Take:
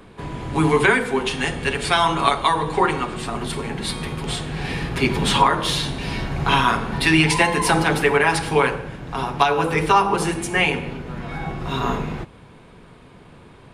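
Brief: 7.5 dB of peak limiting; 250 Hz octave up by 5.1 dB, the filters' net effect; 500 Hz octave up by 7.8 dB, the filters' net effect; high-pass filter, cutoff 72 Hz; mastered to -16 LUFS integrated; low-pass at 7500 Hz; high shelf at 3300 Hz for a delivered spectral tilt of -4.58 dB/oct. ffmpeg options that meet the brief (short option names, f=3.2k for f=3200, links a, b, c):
-af "highpass=72,lowpass=7.5k,equalizer=f=250:t=o:g=4,equalizer=f=500:t=o:g=8.5,highshelf=f=3.3k:g=-6,volume=2.5dB,alimiter=limit=-3.5dB:level=0:latency=1"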